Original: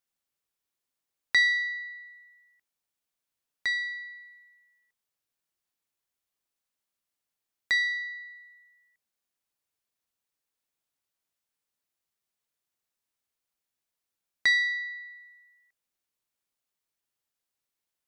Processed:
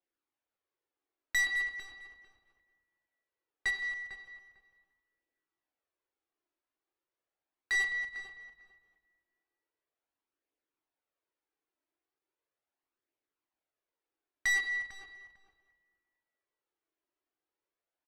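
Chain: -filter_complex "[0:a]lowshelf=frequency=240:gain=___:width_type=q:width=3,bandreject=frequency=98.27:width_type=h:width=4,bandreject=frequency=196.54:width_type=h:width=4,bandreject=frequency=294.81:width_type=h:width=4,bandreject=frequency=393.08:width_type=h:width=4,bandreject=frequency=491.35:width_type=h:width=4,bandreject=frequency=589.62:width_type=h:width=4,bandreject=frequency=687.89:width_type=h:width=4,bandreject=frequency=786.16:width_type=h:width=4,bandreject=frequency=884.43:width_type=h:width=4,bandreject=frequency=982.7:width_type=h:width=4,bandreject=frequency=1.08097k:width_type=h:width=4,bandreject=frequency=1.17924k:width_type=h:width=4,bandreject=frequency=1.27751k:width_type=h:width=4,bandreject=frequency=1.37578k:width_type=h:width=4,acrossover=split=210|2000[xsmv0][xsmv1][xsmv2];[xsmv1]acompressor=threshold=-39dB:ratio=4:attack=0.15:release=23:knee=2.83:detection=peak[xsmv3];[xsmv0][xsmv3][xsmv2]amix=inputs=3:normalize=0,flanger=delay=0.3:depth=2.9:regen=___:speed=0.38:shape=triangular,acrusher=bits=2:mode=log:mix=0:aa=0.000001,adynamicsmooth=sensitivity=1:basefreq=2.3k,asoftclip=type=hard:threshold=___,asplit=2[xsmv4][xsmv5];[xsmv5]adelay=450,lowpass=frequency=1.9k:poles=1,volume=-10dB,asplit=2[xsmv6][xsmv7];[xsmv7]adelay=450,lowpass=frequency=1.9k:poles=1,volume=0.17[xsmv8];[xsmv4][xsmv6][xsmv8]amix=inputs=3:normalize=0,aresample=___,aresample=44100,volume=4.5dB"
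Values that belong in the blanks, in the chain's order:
-8.5, -15, -30.5dB, 32000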